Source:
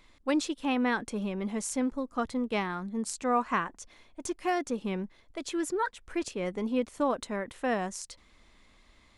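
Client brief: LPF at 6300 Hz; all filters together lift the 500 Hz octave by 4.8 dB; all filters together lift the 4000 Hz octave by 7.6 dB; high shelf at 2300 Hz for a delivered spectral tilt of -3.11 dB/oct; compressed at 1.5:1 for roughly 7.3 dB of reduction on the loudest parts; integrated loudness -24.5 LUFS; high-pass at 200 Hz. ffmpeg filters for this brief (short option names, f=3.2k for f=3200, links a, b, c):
-af "highpass=200,lowpass=6.3k,equalizer=f=500:t=o:g=5.5,highshelf=f=2.3k:g=6.5,equalizer=f=4k:t=o:g=4.5,acompressor=threshold=-40dB:ratio=1.5,volume=10.5dB"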